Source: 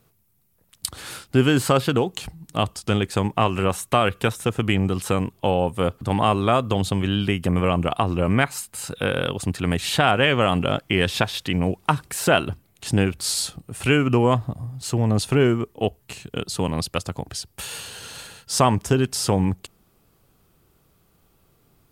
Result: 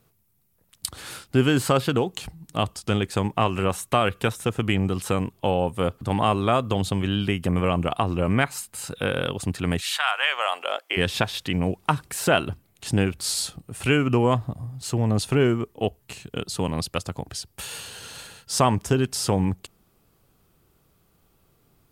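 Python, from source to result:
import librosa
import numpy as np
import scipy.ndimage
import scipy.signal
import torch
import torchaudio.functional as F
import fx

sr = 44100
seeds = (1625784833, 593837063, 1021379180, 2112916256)

y = fx.highpass(x, sr, hz=fx.line((9.8, 1200.0), (10.96, 430.0)), slope=24, at=(9.8, 10.96), fade=0.02)
y = F.gain(torch.from_numpy(y), -2.0).numpy()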